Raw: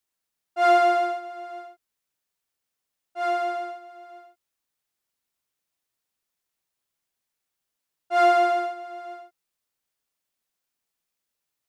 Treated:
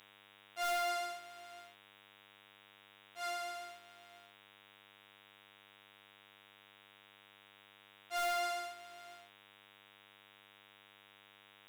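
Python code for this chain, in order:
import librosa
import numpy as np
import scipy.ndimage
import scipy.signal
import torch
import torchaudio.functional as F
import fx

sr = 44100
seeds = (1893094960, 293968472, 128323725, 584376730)

y = fx.dmg_buzz(x, sr, base_hz=100.0, harmonics=38, level_db=-45.0, tilt_db=-5, odd_only=False)
y = np.diff(y, prepend=0.0)
y = 10.0 ** (-29.5 / 20.0) * (np.abs((y / 10.0 ** (-29.5 / 20.0) + 3.0) % 4.0 - 2.0) - 1.0)
y = F.gain(torch.from_numpy(y), 2.5).numpy()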